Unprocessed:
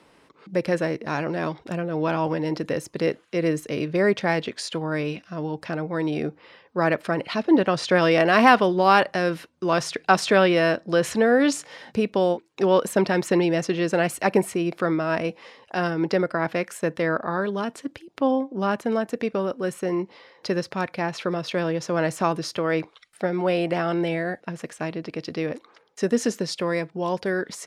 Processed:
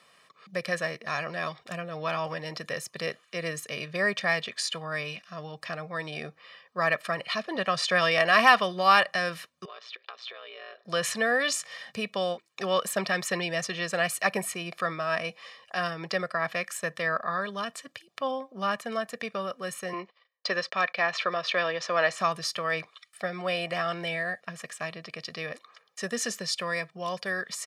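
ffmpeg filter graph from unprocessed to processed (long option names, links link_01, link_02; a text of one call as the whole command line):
ffmpeg -i in.wav -filter_complex "[0:a]asettb=1/sr,asplit=3[link_01][link_02][link_03];[link_01]atrim=end=9.654[link_04];[link_02]atrim=start=9.65:end=10.85,asetpts=PTS-STARTPTS,afade=type=in:duration=0.004:curve=qsin,afade=type=out:start_time=1.196:duration=0.004:curve=qsin,aeval=exprs='val(0)*sin(2*PI*59*n/s)':channel_layout=same,acompressor=threshold=-34dB:ratio=12:attack=3.2:release=140:knee=1:detection=peak,highpass=frequency=390:width=0.5412,highpass=frequency=390:width=1.3066,equalizer=frequency=420:width_type=q:width=4:gain=7,equalizer=frequency=700:width_type=q:width=4:gain=-4,equalizer=frequency=1800:width_type=q:width=4:gain=-4,equalizer=frequency=3600:width_type=q:width=4:gain=5,lowpass=frequency=4000:width=0.5412,lowpass=frequency=4000:width=1.3066[link_05];[link_03]atrim=start=10.846[link_06];[link_04][link_05]acrossfade=duration=0.004:curve1=hsin:curve2=qsin[link_07];[link_07][link_06]acrossfade=duration=0.004:curve1=qsin:curve2=hsin,asettb=1/sr,asplit=3[link_08][link_09][link_10];[link_08]atrim=end=19.934[link_11];[link_09]atrim=start=19.93:end=22.18,asetpts=PTS-STARTPTS,afade=type=in:duration=0.004:curve=qsin,afade=type=out:start_time=2.246:duration=0.004:curve=qsin,acontrast=29,agate=range=-37dB:threshold=-41dB:ratio=16:release=100:detection=peak,highpass=310,lowpass=4200[link_12];[link_10]atrim=start=22.176[link_13];[link_11][link_12]acrossfade=duration=0.004:curve1=hsin:curve2=qsin[link_14];[link_14][link_13]acrossfade=duration=0.004:curve1=qsin:curve2=hsin,highpass=250,equalizer=frequency=450:width=0.9:gain=-13.5,aecho=1:1:1.7:0.74" out.wav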